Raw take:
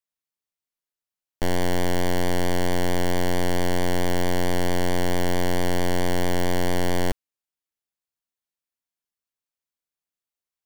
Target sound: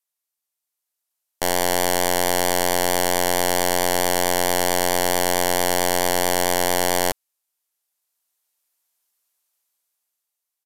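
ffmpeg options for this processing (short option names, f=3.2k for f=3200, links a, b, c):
-af "equalizer=f=730:t=o:w=2.2:g=12,dynaudnorm=f=190:g=11:m=10dB,crystalizer=i=9.5:c=0,aresample=32000,aresample=44100,volume=-12dB"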